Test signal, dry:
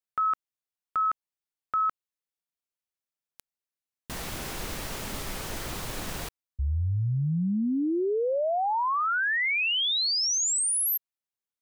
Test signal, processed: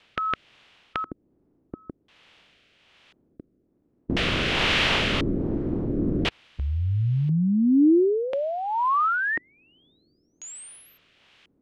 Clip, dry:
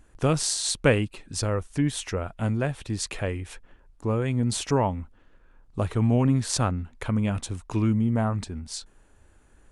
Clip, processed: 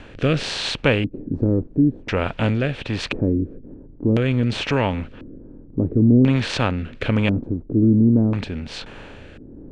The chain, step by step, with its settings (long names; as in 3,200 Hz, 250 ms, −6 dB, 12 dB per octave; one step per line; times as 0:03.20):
compressor on every frequency bin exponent 0.6
rotating-speaker cabinet horn 1.2 Hz
auto-filter low-pass square 0.48 Hz 310–3,000 Hz
level +3 dB